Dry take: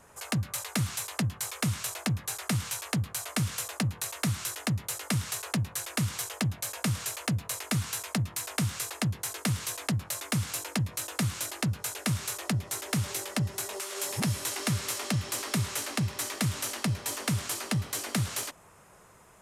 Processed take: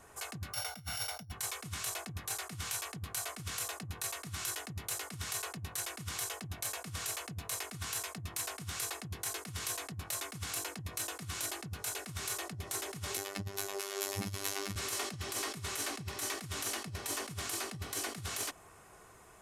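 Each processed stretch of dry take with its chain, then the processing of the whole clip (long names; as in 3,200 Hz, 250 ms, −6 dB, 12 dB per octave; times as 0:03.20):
0:00.53–0:01.32: samples sorted by size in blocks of 8 samples + comb filter 1.4 ms, depth 94%
0:13.17–0:14.76: phases set to zero 98.8 Hz + parametric band 8,700 Hz −6 dB 0.38 octaves
whole clip: comb filter 2.7 ms, depth 37%; compressor whose output falls as the input rises −33 dBFS, ratio −0.5; level −4.5 dB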